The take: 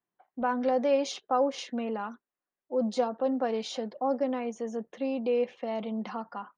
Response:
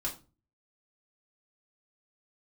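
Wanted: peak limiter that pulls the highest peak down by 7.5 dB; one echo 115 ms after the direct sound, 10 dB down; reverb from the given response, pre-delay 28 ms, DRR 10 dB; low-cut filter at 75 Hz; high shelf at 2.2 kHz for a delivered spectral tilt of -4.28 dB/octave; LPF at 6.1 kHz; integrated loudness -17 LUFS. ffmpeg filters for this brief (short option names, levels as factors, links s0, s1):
-filter_complex "[0:a]highpass=75,lowpass=6100,highshelf=f=2200:g=-5,alimiter=limit=0.0708:level=0:latency=1,aecho=1:1:115:0.316,asplit=2[s0][s1];[1:a]atrim=start_sample=2205,adelay=28[s2];[s1][s2]afir=irnorm=-1:irlink=0,volume=0.237[s3];[s0][s3]amix=inputs=2:normalize=0,volume=5.96"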